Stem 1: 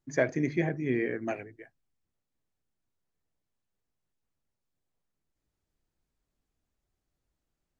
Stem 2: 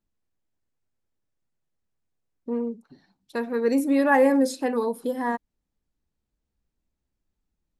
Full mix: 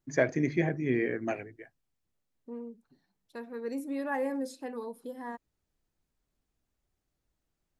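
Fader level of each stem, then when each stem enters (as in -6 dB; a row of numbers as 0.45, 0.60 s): +0.5, -13.5 dB; 0.00, 0.00 s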